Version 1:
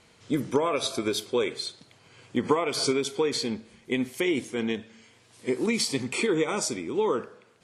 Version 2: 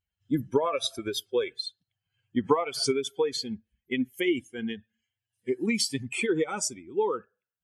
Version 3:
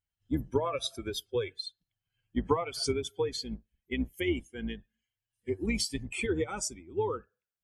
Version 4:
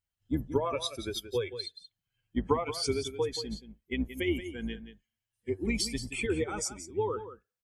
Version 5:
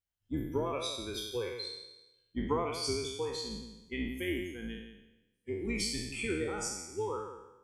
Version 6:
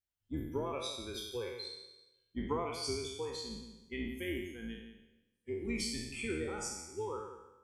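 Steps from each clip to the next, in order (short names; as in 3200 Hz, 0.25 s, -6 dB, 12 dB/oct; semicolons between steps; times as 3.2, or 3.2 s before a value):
per-bin expansion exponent 2; gain +3 dB
octaver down 2 oct, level -4 dB; gain -4.5 dB
echo 0.177 s -11.5 dB
spectral trails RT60 0.99 s; gain -6.5 dB
resonator 77 Hz, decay 0.74 s, harmonics odd, mix 60%; gain +3.5 dB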